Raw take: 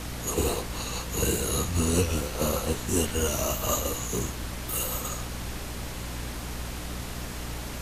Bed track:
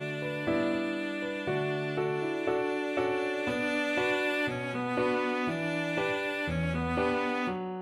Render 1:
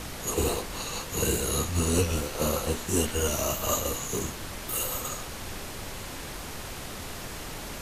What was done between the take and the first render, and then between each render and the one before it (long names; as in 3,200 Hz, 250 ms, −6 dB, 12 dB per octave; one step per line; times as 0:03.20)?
mains-hum notches 60/120/180/240/300 Hz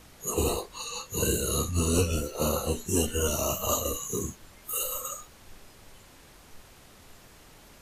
noise reduction from a noise print 15 dB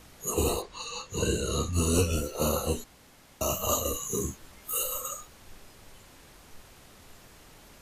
0:00.62–0:01.73: low-pass filter 6,300 Hz
0:02.84–0:03.41: fill with room tone
0:04.05–0:04.82: double-tracking delay 15 ms −6.5 dB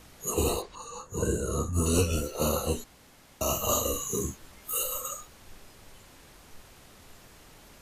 0:00.75–0:01.86: flat-topped bell 3,300 Hz −14 dB
0:03.42–0:04.12: double-tracking delay 46 ms −5.5 dB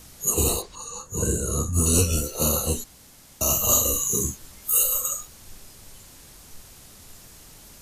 bass and treble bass +5 dB, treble +11 dB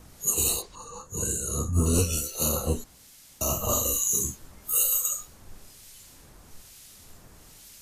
two-band tremolo in antiphase 1.1 Hz, depth 70%, crossover 1,800 Hz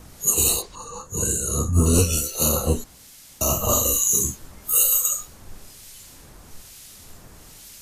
level +5.5 dB